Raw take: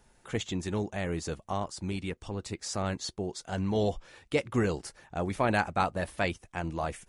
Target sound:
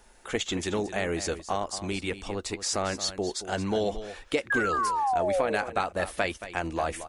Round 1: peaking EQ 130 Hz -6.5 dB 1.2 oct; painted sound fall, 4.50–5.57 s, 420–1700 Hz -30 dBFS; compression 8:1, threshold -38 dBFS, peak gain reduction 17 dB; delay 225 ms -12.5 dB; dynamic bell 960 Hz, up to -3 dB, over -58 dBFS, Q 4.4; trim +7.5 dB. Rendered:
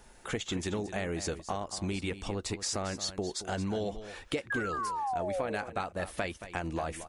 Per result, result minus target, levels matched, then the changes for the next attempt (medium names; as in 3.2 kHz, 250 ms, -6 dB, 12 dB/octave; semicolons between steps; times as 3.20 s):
compression: peak gain reduction +7.5 dB; 125 Hz band +5.0 dB
change: compression 8:1, threshold -30 dBFS, peak gain reduction 10 dB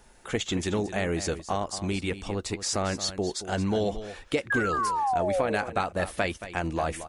125 Hz band +4.5 dB
change: peaking EQ 130 Hz -15.5 dB 1.2 oct